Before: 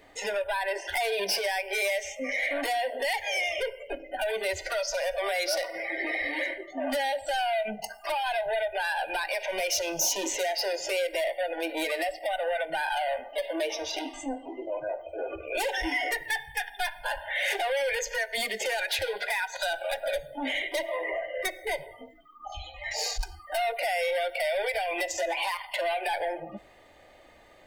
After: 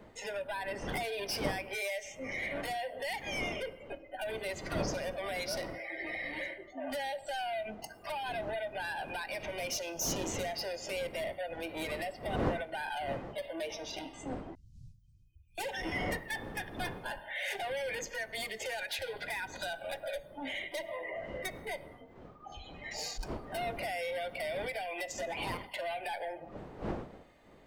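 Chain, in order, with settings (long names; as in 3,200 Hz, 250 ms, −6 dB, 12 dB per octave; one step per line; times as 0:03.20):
wind on the microphone 510 Hz −37 dBFS
0:14.55–0:15.58: inverse Chebyshev band-stop filter 500–1,400 Hz, stop band 80 dB
level −8.5 dB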